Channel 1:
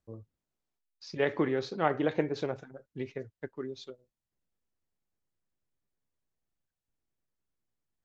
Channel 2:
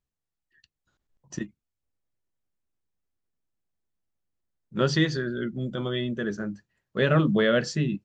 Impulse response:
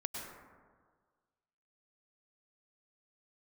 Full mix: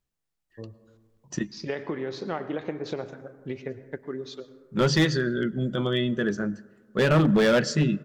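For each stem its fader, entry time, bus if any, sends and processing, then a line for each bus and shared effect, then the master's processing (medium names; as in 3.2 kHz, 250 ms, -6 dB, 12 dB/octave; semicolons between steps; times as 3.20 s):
+3.0 dB, 0.50 s, send -9 dB, compression 16:1, threshold -32 dBFS, peak gain reduction 12.5 dB
+3.0 dB, 0.00 s, send -20 dB, none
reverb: on, RT60 1.6 s, pre-delay 92 ms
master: peaking EQ 79 Hz -6.5 dB 0.4 oct; hard clipper -15.5 dBFS, distortion -13 dB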